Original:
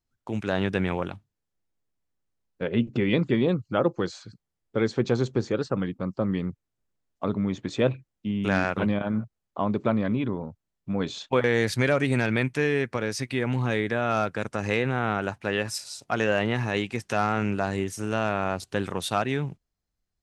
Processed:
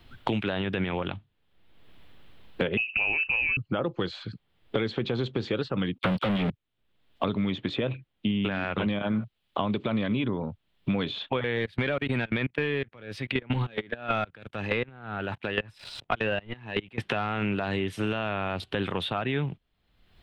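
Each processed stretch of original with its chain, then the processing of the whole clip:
0:02.77–0:03.57: high-pass filter 51 Hz + voice inversion scrambler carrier 2,800 Hz
0:05.98–0:06.50: all-pass dispersion lows, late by 53 ms, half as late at 2,100 Hz + leveller curve on the samples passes 5
0:11.56–0:16.98: leveller curve on the samples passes 1 + output level in coarse steps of 22 dB + transient designer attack 0 dB, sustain −10 dB
whole clip: high shelf with overshoot 4,600 Hz −12 dB, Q 3; brickwall limiter −17 dBFS; multiband upward and downward compressor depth 100%

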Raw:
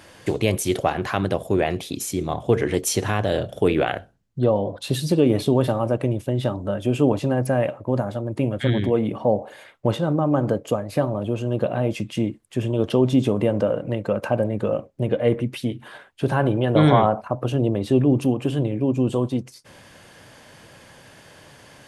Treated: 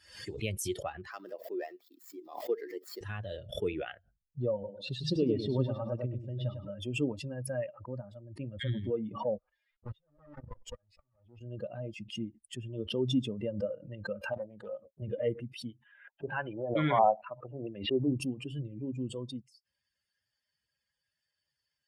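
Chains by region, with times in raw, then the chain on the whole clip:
0:01.11–0:03.01: running median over 15 samples + high-pass filter 270 Hz 24 dB per octave + centre clipping without the shift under −44.5 dBFS
0:04.53–0:06.69: low-pass filter 6,000 Hz + repeating echo 102 ms, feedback 36%, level −4 dB
0:09.38–0:11.41: lower of the sound and its delayed copy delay 7.9 ms + output level in coarse steps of 22 dB + high-frequency loss of the air 65 metres
0:14.33–0:15.02: low-shelf EQ 130 Hz −9.5 dB + highs frequency-modulated by the lows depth 0.28 ms
0:15.85–0:18.08: low-shelf EQ 120 Hz −10.5 dB + auto-filter low-pass square 2.2 Hz 790–2,500 Hz
whole clip: spectral dynamics exaggerated over time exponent 2; background raised ahead of every attack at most 100 dB per second; level −8.5 dB

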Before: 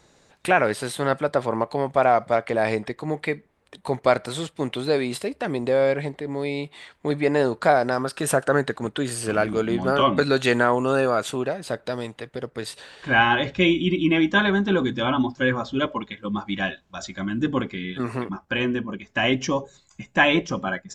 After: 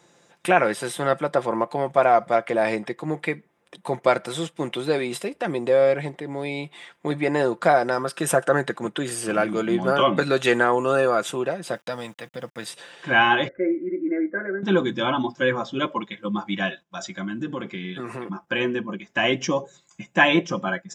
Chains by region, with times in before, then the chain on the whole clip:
0:11.73–0:12.65: parametric band 380 Hz −14.5 dB 0.32 octaves + centre clipping without the shift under −50 dBFS
0:13.48–0:14.63: Chebyshev low-pass with heavy ripple 2,100 Hz, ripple 9 dB + phaser with its sweep stopped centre 380 Hz, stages 4
0:16.68–0:18.47: noise gate −58 dBFS, range −15 dB + downward compressor 3 to 1, threshold −27 dBFS
whole clip: high-pass filter 150 Hz 12 dB per octave; notch filter 4,300 Hz, Q 6.8; comb filter 5.8 ms, depth 43%

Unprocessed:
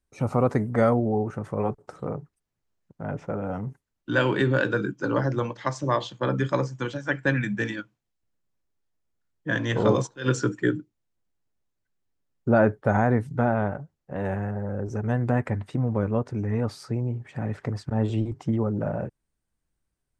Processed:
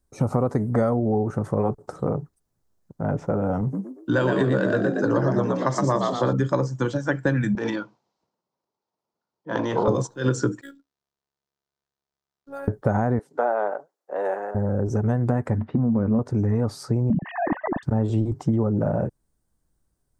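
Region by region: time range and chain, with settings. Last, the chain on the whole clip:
0:03.61–0:06.33: high-pass filter 54 Hz + echo with shifted repeats 117 ms, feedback 34%, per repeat +64 Hz, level −3.5 dB
0:07.55–0:09.88: transient designer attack −9 dB, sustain +10 dB + loudspeaker in its box 250–5,200 Hz, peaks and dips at 280 Hz −6 dB, 920 Hz +8 dB, 1,700 Hz −7 dB, 3,400 Hz −3 dB
0:10.61–0:12.68: first difference + phases set to zero 277 Hz + linearly interpolated sample-rate reduction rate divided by 4×
0:13.19–0:14.55: high-pass filter 420 Hz 24 dB per octave + high-shelf EQ 5,600 Hz −7.5 dB
0:15.58–0:16.19: low-pass filter 2,700 Hz 24 dB per octave + parametric band 230 Hz +14 dB 0.24 octaves + downward compressor 2 to 1, threshold −24 dBFS
0:17.10–0:17.83: three sine waves on the formant tracks + comb filter 1.1 ms, depth 83% + transient designer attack −2 dB, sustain +2 dB
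whole clip: parametric band 2,500 Hz −11.5 dB 1.3 octaves; downward compressor 5 to 1, threshold −26 dBFS; level +8 dB

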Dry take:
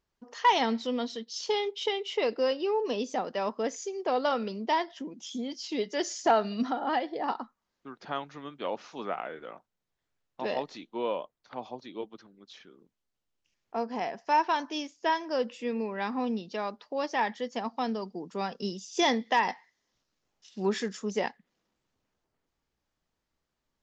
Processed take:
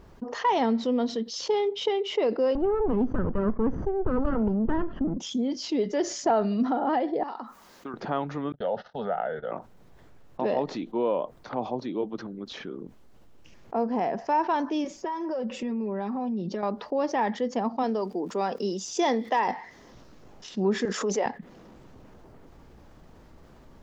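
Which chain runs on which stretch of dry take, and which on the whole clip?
0:02.55–0:05.18: lower of the sound and its delayed copy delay 0.66 ms + low-pass filter 1,400 Hz + low-shelf EQ 340 Hz +9 dB
0:07.23–0:07.94: spectral tilt +3.5 dB per octave + downward compressor 5 to 1, threshold −48 dBFS
0:08.52–0:09.52: low-pass filter 5,500 Hz + noise gate −48 dBFS, range −42 dB + phaser with its sweep stopped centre 1,600 Hz, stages 8
0:14.84–0:16.63: parametric band 3,200 Hz −3.5 dB 1.5 octaves + comb filter 5.3 ms, depth 77% + downward compressor 4 to 1, threshold −40 dBFS
0:17.82–0:19.47: high-pass filter 310 Hz + high-shelf EQ 6,000 Hz +9 dB + surface crackle 230 per second −54 dBFS
0:20.85–0:21.26: high-pass filter 470 Hz + background raised ahead of every attack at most 31 dB per second
whole clip: tilt shelving filter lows +8.5 dB, about 1,500 Hz; envelope flattener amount 50%; level −5.5 dB

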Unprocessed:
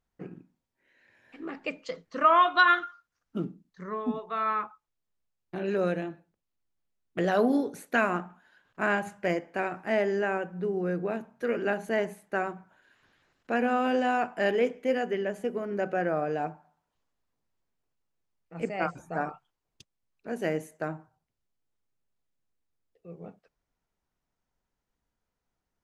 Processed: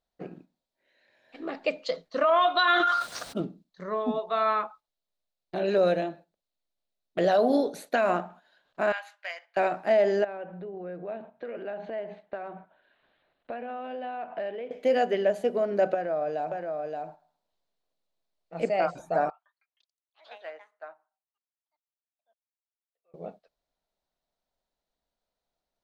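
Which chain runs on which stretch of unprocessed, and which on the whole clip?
0:02.64–0:03.41: high-pass filter 92 Hz + parametric band 8,700 Hz +12 dB 0.22 octaves + level that may fall only so fast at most 33 dB per second
0:08.92–0:09.57: Bessel high-pass filter 1,700 Hz, order 4 + parametric band 8,900 Hz −14 dB 1.3 octaves + floating-point word with a short mantissa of 8 bits
0:10.24–0:14.71: low-pass filter 3,200 Hz 24 dB per octave + downward compressor 8 to 1, threshold −38 dBFS
0:15.94–0:18.57: downward compressor, threshold −33 dBFS + single-tap delay 574 ms −4 dB
0:19.30–0:23.14: four-pole ladder band-pass 1,500 Hz, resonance 20% + delay with pitch and tempo change per echo 156 ms, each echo +5 semitones, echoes 3, each echo −6 dB
whole clip: noise gate −51 dBFS, range −6 dB; graphic EQ with 15 bands 100 Hz −9 dB, 630 Hz +12 dB, 4,000 Hz +12 dB; brickwall limiter −14.5 dBFS

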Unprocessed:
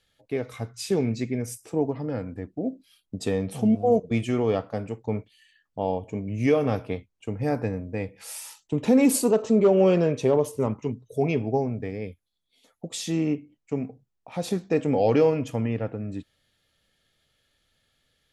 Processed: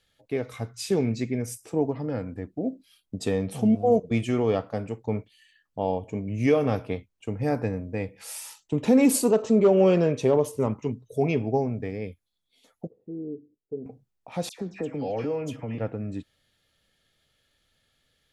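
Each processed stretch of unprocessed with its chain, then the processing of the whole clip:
0:12.87–0:13.86: downward compressor 2 to 1, threshold −27 dBFS + transistor ladder low-pass 470 Hz, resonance 70%
0:14.49–0:15.78: high-shelf EQ 9,300 Hz −3 dB + downward compressor 2 to 1, threshold −32 dBFS + all-pass dispersion lows, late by 97 ms, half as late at 2,000 Hz
whole clip: no processing

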